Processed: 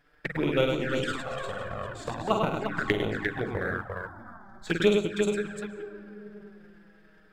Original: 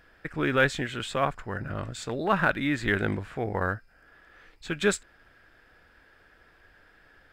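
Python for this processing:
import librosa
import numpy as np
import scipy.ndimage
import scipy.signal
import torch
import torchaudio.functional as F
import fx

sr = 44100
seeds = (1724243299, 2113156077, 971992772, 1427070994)

p1 = fx.reverse_delay(x, sr, ms=424, wet_db=-9)
p2 = fx.level_steps(p1, sr, step_db=17, at=(2.49, 2.9))
p3 = fx.transient(p2, sr, attack_db=12, sustain_db=-10)
p4 = fx.rev_freeverb(p3, sr, rt60_s=4.0, hf_ratio=0.3, predelay_ms=100, drr_db=11.5)
p5 = fx.over_compress(p4, sr, threshold_db=-26.0, ratio=-0.5, at=(0.83, 1.34))
p6 = fx.fixed_phaser(p5, sr, hz=1100.0, stages=4, at=(3.72, 4.67))
p7 = p6 + fx.echo_multitap(p6, sr, ms=(48, 102, 348), db=(-6.0, -4.0, -6.0), dry=0)
p8 = fx.env_flanger(p7, sr, rest_ms=7.0, full_db=-15.5)
p9 = fx.hum_notches(p8, sr, base_hz=50, count=4)
y = p9 * librosa.db_to_amplitude(-5.0)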